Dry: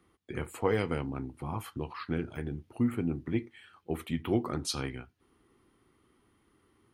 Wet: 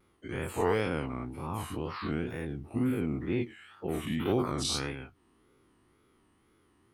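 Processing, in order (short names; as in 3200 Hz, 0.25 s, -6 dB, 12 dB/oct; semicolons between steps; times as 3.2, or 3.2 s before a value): spectral dilation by 0.12 s; wow and flutter 130 cents; gain -4 dB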